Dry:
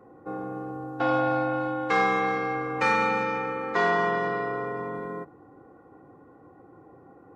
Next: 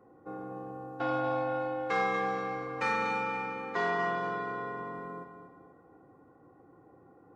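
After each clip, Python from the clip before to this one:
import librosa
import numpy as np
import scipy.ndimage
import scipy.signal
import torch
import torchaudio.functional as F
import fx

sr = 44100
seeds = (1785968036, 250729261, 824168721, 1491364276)

y = fx.echo_feedback(x, sr, ms=240, feedback_pct=39, wet_db=-9)
y = y * librosa.db_to_amplitude(-7.0)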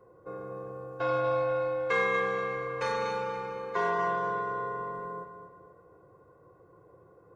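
y = x + 0.81 * np.pad(x, (int(1.9 * sr / 1000.0), 0))[:len(x)]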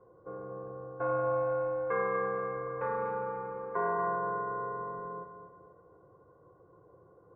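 y = scipy.signal.sosfilt(scipy.signal.butter(4, 1500.0, 'lowpass', fs=sr, output='sos'), x)
y = y * librosa.db_to_amplitude(-2.0)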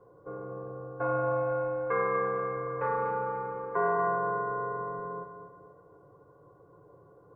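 y = x + 0.36 * np.pad(x, (int(7.0 * sr / 1000.0), 0))[:len(x)]
y = y * librosa.db_to_amplitude(2.5)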